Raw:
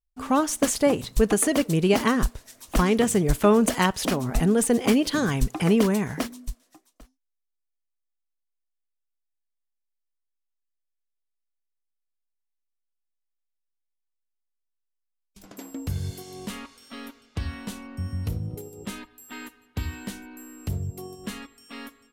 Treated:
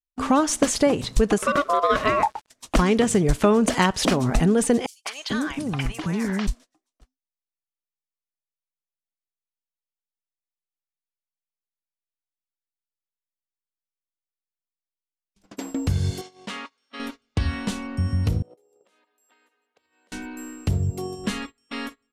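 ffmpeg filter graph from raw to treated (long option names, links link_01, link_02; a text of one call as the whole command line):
ffmpeg -i in.wav -filter_complex "[0:a]asettb=1/sr,asplit=3[link_01][link_02][link_03];[link_01]atrim=end=1.384[link_04];[link_02]atrim=start=1.38:end=2.5,asetpts=PTS-STARTPTS,afade=type=in:duration=0.004:curve=qsin,afade=type=out:start_time=1.116:duration=0.004:curve=qsin,equalizer=frequency=7900:width=0.41:gain=-7,aeval=exprs='val(0)*gte(abs(val(0)),0.00376)':channel_layout=same,aeval=exprs='val(0)*sin(2*PI*860*n/s)':channel_layout=same[link_05];[link_03]atrim=start=2.496[link_06];[link_04][link_05]acrossfade=duration=0.004:curve1=hsin:curve2=qsin[link_07];[link_07][link_06]acrossfade=duration=0.004:curve1=qsin:curve2=hsin,asettb=1/sr,asplit=3[link_08][link_09][link_10];[link_08]atrim=end=4.864[link_11];[link_09]atrim=start=4.86:end=6.47,asetpts=PTS-STARTPTS,afade=type=in:duration=0.004:curve=qsin,afade=type=out:start_time=1.606:duration=0.004:curve=qsin,equalizer=frequency=440:width=0.99:gain=-6.5,acompressor=threshold=-31dB:ratio=4:attack=3.2:release=140:knee=1:detection=peak,acrossover=split=660|5300[link_12][link_13][link_14];[link_13]adelay=190[link_15];[link_12]adelay=440[link_16];[link_16][link_15][link_14]amix=inputs=3:normalize=0,atrim=end_sample=71001[link_17];[link_10]atrim=start=6.466[link_18];[link_11][link_17]acrossfade=duration=0.004:curve1=hsin:curve2=qsin[link_19];[link_19][link_18]acrossfade=duration=0.004:curve1=qsin:curve2=hsin,asettb=1/sr,asplit=3[link_20][link_21][link_22];[link_20]atrim=end=16.214[link_23];[link_21]atrim=start=16.21:end=17,asetpts=PTS-STARTPTS,afade=type=in:duration=0.004:curve=qsin,afade=type=out:start_time=0.786:duration=0.004:curve=qsin,highpass=frequency=760:poles=1,aemphasis=mode=reproduction:type=50fm[link_24];[link_22]atrim=start=16.996[link_25];[link_23][link_24]acrossfade=duration=0.004:curve1=hsin:curve2=qsin[link_26];[link_26][link_25]acrossfade=duration=0.004:curve1=qsin:curve2=hsin,asettb=1/sr,asplit=3[link_27][link_28][link_29];[link_27]atrim=end=18.424[link_30];[link_28]atrim=start=18.42:end=20.12,asetpts=PTS-STARTPTS,afade=type=in:duration=0.004:curve=qsin,afade=type=out:start_time=1.696:duration=0.004:curve=qsin,acompressor=threshold=-44dB:ratio=20:attack=3.2:release=140:knee=1:detection=peak,highpass=frequency=530:width_type=q:width=2.4[link_31];[link_29]atrim=start=20.116[link_32];[link_30][link_31]acrossfade=duration=0.004:curve1=hsin:curve2=qsin[link_33];[link_33][link_32]acrossfade=duration=0.004:curve1=qsin:curve2=hsin,agate=range=-23dB:threshold=-44dB:ratio=16:detection=peak,lowpass=8200,acompressor=threshold=-26dB:ratio=2.5,volume=8dB" out.wav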